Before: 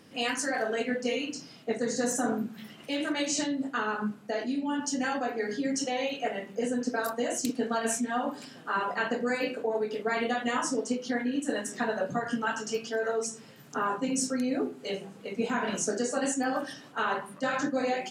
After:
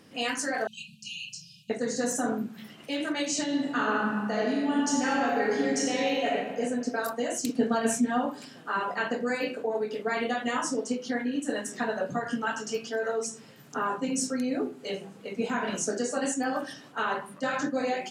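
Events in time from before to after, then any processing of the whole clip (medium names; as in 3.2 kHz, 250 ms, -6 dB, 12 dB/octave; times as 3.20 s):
0.67–1.70 s: brick-wall FIR band-stop 200–2400 Hz
3.43–6.28 s: reverb throw, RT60 1.7 s, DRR -2.5 dB
7.55–8.26 s: bass shelf 410 Hz +8 dB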